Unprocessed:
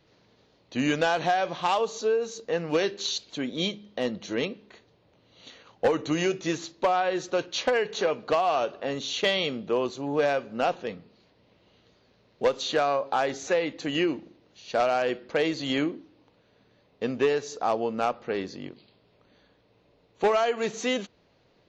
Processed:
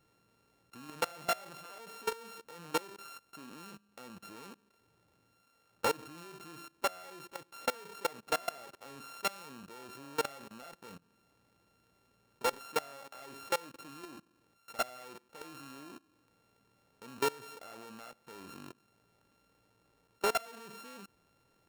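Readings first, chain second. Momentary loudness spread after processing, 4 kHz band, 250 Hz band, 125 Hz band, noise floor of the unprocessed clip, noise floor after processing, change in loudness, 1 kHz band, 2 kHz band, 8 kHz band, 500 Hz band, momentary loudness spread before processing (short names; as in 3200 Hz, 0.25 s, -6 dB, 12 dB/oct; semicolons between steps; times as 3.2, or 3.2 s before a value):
17 LU, -12.0 dB, -18.5 dB, -17.0 dB, -64 dBFS, -72 dBFS, -11.5 dB, -11.0 dB, -11.5 dB, n/a, -15.5 dB, 8 LU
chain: sample sorter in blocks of 32 samples; level quantiser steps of 22 dB; gain -5.5 dB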